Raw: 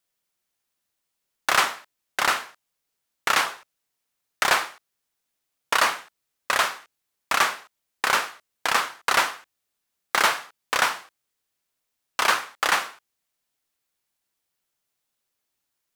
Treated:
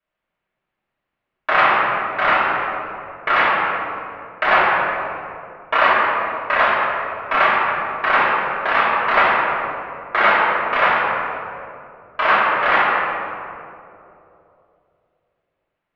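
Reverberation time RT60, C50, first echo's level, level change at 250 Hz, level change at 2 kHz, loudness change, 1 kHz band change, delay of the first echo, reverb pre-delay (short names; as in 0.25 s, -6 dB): 2.8 s, -2.0 dB, none, +10.0 dB, +8.0 dB, +6.0 dB, +9.5 dB, none, 3 ms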